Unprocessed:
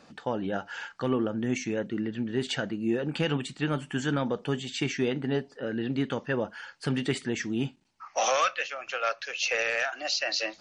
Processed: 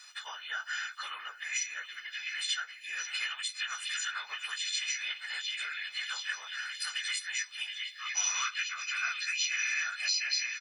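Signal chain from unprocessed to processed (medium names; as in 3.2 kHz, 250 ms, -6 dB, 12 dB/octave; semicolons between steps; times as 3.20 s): partials quantised in pitch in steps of 3 st; high-pass 1.4 kHz 24 dB/octave; doubling 15 ms -12 dB; repeats whose band climbs or falls 712 ms, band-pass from 2.6 kHz, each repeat 0.7 oct, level -7 dB; compression 2.5:1, threshold -36 dBFS, peak gain reduction 13 dB; whisper effect; trim +2 dB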